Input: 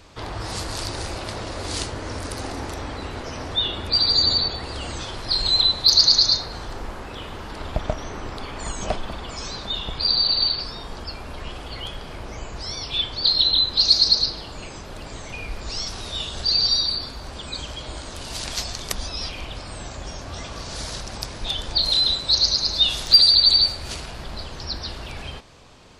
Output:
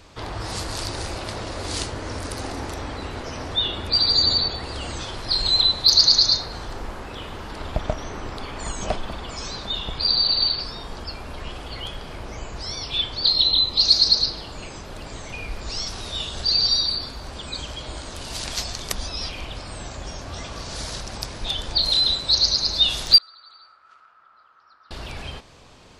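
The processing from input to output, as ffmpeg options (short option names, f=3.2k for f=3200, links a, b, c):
-filter_complex "[0:a]asettb=1/sr,asplit=3[a][b][c];[a]atrim=end=13.294[d];[b]atrim=start=13.29:end=13.83,asetpts=PTS-STARTPTS,afade=t=in:d=0.004:c=qsin,afade=t=out:st=0.536:d=0.004:c=qsin,asuperstop=centerf=1600:order=4:qfactor=4.2[e];[c]atrim=start=13.826[f];[d][e]acrossfade=d=0.004:c1=hsin:c2=qsin[g];[g][f]acrossfade=d=0.004:c1=qsin:c2=hsin,asettb=1/sr,asplit=3[h][i][j];[h]atrim=end=23.184[k];[i]atrim=start=23.18:end=24.91,asetpts=PTS-STARTPTS,afade=t=in:d=0.004:c=qsin,afade=t=out:st=1.726:d=0.004:c=qsin,bandpass=f=1.3k:t=q:w=16[l];[j]atrim=start=24.906[m];[k][l]acrossfade=d=0.004:c1=hsin:c2=qsin[n];[n][m]acrossfade=d=0.004:c1=qsin:c2=hsin"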